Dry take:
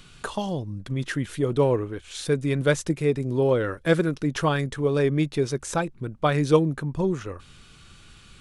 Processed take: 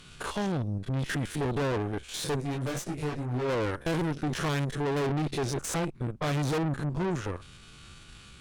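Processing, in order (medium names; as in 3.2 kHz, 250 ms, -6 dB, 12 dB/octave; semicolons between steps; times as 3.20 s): spectrogram pixelated in time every 50 ms; valve stage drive 33 dB, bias 0.8; 2.40–3.47 s: detune thickener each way 10 cents -> 27 cents; trim +6.5 dB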